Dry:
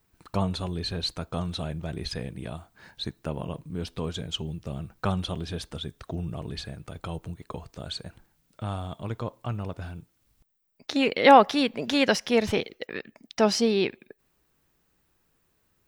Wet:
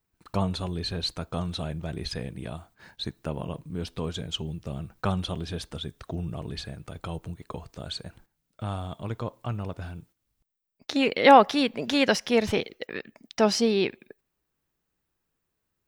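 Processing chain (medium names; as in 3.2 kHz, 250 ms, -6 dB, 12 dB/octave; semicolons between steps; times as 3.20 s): gate -54 dBFS, range -10 dB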